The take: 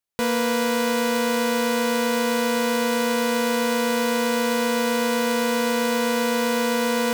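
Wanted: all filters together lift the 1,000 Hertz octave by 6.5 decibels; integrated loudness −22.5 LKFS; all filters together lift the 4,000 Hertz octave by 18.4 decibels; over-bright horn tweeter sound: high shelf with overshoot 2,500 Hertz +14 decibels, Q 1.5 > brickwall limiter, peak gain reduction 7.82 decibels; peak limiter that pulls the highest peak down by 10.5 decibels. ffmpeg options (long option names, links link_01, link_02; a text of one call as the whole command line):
ffmpeg -i in.wav -af "equalizer=frequency=1000:width_type=o:gain=9,equalizer=frequency=4000:width_type=o:gain=3.5,alimiter=limit=-18.5dB:level=0:latency=1,highshelf=frequency=2500:width_type=q:width=1.5:gain=14,volume=2.5dB,alimiter=limit=-11dB:level=0:latency=1" out.wav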